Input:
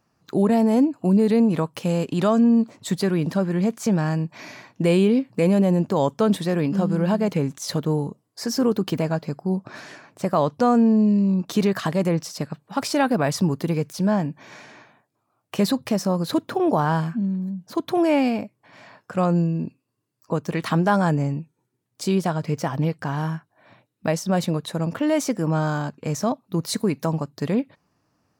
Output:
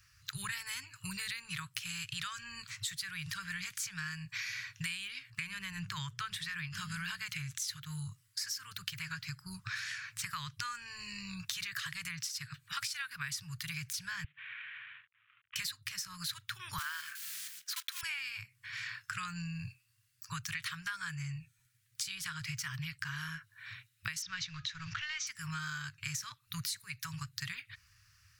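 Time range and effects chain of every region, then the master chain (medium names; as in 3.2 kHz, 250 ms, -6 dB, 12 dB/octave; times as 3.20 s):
5.30–6.72 s: treble shelf 3.9 kHz -10 dB + hum notches 60/120/180/240/300/360/420/480/540 Hz
14.24–15.56 s: CVSD coder 16 kbps + high-pass 250 Hz + compression 4:1, threshold -51 dBFS
16.78–18.03 s: block-companded coder 5-bit + high-pass 970 Hz
24.22–25.27 s: companding laws mixed up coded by mu + elliptic low-pass 6.2 kHz, stop band 60 dB + de-hum 418.1 Hz, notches 7
whole clip: inverse Chebyshev band-stop 210–760 Hz, stop band 50 dB; compression 10:1, threshold -47 dBFS; trim +10.5 dB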